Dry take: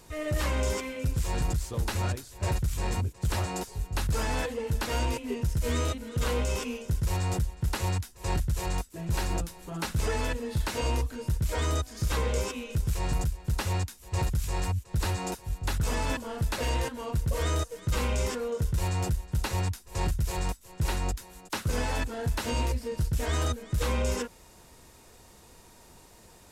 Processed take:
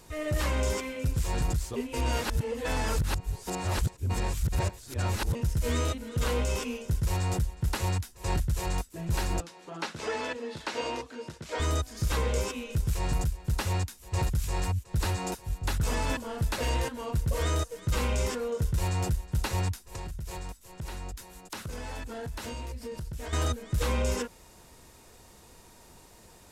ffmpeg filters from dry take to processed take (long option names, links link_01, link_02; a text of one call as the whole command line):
ffmpeg -i in.wav -filter_complex "[0:a]asettb=1/sr,asplit=3[link_01][link_02][link_03];[link_01]atrim=end=9.404[link_04];[link_02]atrim=start=9.4:end=11.6,asetpts=PTS-STARTPTS,afade=type=in:duration=0.004:curve=qsin,afade=type=out:start_time=2.196:duration=0.004:curve=qsin,highpass=280,lowpass=5500[link_05];[link_03]atrim=start=11.596[link_06];[link_04][link_05]acrossfade=duration=0.004:curve1=hsin:curve2=qsin[link_07];[link_07][link_06]acrossfade=duration=0.004:curve1=qsin:curve2=hsin,asettb=1/sr,asplit=3[link_08][link_09][link_10];[link_08]atrim=end=19.824[link_11];[link_09]atrim=start=19.82:end=23.33,asetpts=PTS-STARTPTS,afade=type=in:duration=0.004:curve=qsin,afade=type=out:start_time=3.506:duration=0.004:curve=qsin,acompressor=threshold=-34dB:ratio=6:attack=3.2:release=140:knee=1:detection=peak[link_12];[link_10]atrim=start=23.326[link_13];[link_11][link_12]acrossfade=duration=0.004:curve1=hsin:curve2=qsin[link_14];[link_14][link_13]acrossfade=duration=0.004:curve1=qsin:curve2=hsin,asplit=3[link_15][link_16][link_17];[link_15]atrim=end=1.762[link_18];[link_16]atrim=start=1.758:end=5.352,asetpts=PTS-STARTPTS,areverse[link_19];[link_17]atrim=start=5.348[link_20];[link_18][link_19]acrossfade=duration=0.004:curve1=hsin:curve2=hsin[link_21];[link_21][link_20]acrossfade=duration=0.004:curve1=hsin:curve2=hsin" out.wav